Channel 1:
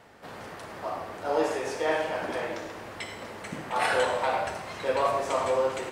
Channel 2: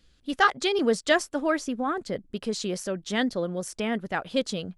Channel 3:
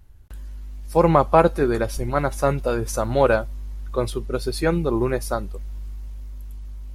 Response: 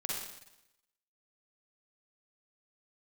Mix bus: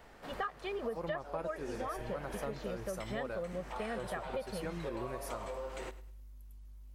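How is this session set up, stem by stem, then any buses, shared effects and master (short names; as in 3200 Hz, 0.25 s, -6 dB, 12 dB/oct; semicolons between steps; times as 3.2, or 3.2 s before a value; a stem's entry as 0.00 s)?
-3.5 dB, 0.00 s, no send, echo send -20 dB, compressor, threshold -29 dBFS, peak gain reduction 8.5 dB; auto duck -6 dB, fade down 0.70 s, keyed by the third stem
-8.0 dB, 0.00 s, no send, no echo send, LPF 2000 Hz 12 dB/oct; comb 1.7 ms, depth 88%
-17.0 dB, 0.00 s, no send, no echo send, high shelf 12000 Hz +11 dB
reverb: off
echo: feedback echo 0.103 s, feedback 30%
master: compressor 6:1, threshold -35 dBFS, peak gain reduction 14.5 dB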